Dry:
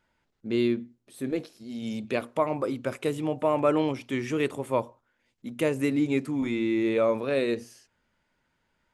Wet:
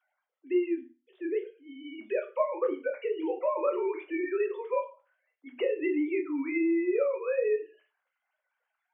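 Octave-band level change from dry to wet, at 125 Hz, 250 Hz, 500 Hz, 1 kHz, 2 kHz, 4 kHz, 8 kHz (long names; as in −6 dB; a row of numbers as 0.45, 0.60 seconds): below −35 dB, −4.5 dB, −1.0 dB, −5.0 dB, −3.5 dB, below −10 dB, below −30 dB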